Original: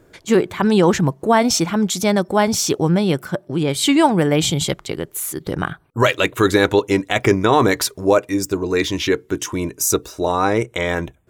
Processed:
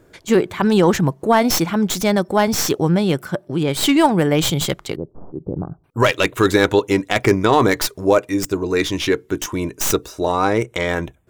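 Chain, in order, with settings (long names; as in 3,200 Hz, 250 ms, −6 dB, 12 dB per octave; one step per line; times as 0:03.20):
stylus tracing distortion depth 0.077 ms
0:04.96–0:05.84: Gaussian smoothing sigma 12 samples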